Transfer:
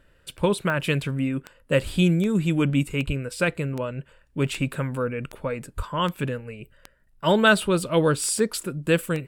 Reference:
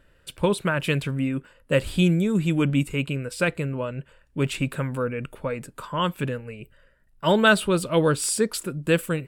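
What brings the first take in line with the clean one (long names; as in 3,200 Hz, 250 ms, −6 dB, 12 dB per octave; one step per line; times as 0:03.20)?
click removal
0:03.06–0:03.18: high-pass filter 140 Hz 24 dB per octave
0:05.76–0:05.88: high-pass filter 140 Hz 24 dB per octave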